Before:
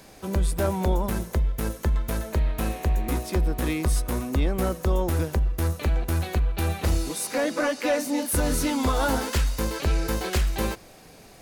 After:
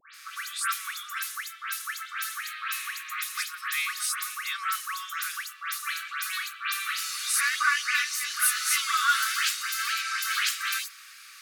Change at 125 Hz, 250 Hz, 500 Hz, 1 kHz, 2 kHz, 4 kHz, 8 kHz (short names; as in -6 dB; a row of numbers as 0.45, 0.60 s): under -40 dB, under -40 dB, under -40 dB, +0.5 dB, +7.5 dB, +6.5 dB, +4.5 dB